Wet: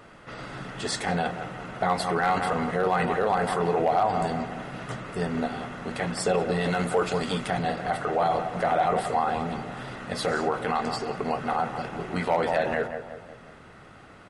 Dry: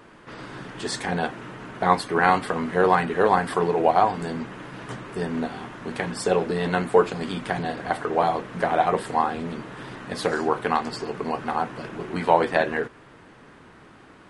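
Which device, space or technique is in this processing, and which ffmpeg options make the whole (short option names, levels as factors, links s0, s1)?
clipper into limiter: -filter_complex "[0:a]aecho=1:1:1.5:0.38,asettb=1/sr,asplit=3[s0][s1][s2];[s0]atrim=end=6.614[s3];[s1]atrim=start=6.61:end=7.48,asetpts=PTS-STARTPTS,afade=t=in:d=0.004:c=qsin,afade=t=out:st=0.866:d=0.004:c=qsin,highshelf=f=4100:g=6.5[s4];[s2]atrim=start=7.476[s5];[s3][s4]acrossfade=d=0.004:c1=hsin:c2=qsin[s6];[s6][s5]acrossfade=d=0.004:c1=qsin:c2=hsin,asplit=2[s7][s8];[s8]adelay=179,lowpass=f=1800:p=1,volume=0.282,asplit=2[s9][s10];[s10]adelay=179,lowpass=f=1800:p=1,volume=0.51,asplit=2[s11][s12];[s12]adelay=179,lowpass=f=1800:p=1,volume=0.51,asplit=2[s13][s14];[s14]adelay=179,lowpass=f=1800:p=1,volume=0.51,asplit=2[s15][s16];[s16]adelay=179,lowpass=f=1800:p=1,volume=0.51[s17];[s7][s9][s11][s13][s15][s17]amix=inputs=6:normalize=0,asoftclip=type=hard:threshold=0.398,alimiter=limit=0.178:level=0:latency=1:release=18"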